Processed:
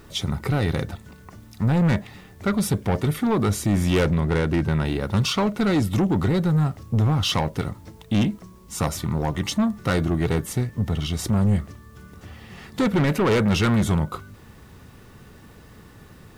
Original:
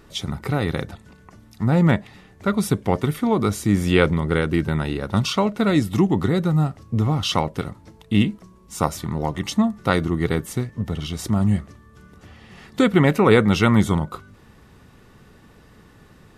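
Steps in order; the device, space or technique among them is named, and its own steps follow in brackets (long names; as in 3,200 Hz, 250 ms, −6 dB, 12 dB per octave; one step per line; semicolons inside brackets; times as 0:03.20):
open-reel tape (soft clipping −18 dBFS, distortion −9 dB; parametric band 90 Hz +3.5 dB 0.93 octaves; white noise bed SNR 40 dB)
0:04.07–0:04.86: high-shelf EQ 8,500 Hz −5.5 dB
level +2 dB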